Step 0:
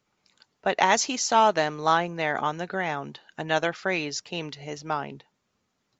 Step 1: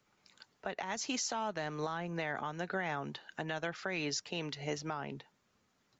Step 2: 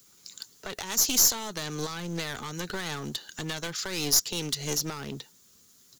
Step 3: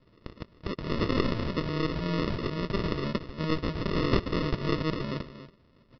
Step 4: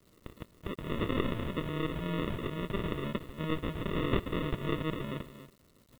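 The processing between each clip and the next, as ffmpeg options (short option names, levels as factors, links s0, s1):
-filter_complex "[0:a]equalizer=f=1600:t=o:w=0.77:g=2.5,acrossover=split=190[s0][s1];[s1]acompressor=threshold=0.0501:ratio=8[s2];[s0][s2]amix=inputs=2:normalize=0,alimiter=level_in=1.19:limit=0.0631:level=0:latency=1:release=371,volume=0.841"
-af "firequalizer=gain_entry='entry(420,0);entry(690,-9);entry(1200,-3);entry(3800,-1);entry(8700,9)':delay=0.05:min_phase=1,aeval=exprs='clip(val(0),-1,0.00596)':c=same,aexciter=amount=1.4:drive=10:freq=3300,volume=2.37"
-af "aecho=1:1:283:0.251,aresample=11025,acrusher=samples=14:mix=1:aa=0.000001,aresample=44100,volume=1.68"
-af "aresample=8000,aresample=44100,acrusher=bits=9:mix=0:aa=0.000001,crystalizer=i=1:c=0,volume=0.596"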